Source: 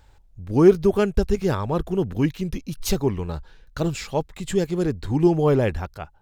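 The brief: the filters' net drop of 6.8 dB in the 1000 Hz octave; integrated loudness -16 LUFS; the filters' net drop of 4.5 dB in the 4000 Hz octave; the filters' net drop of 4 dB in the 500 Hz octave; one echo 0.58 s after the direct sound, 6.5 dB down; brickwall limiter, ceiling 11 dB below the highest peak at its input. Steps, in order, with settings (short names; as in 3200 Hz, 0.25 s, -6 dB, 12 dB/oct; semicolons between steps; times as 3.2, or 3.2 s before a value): bell 500 Hz -4.5 dB; bell 1000 Hz -7 dB; bell 4000 Hz -5.5 dB; limiter -17 dBFS; echo 0.58 s -6.5 dB; gain +11.5 dB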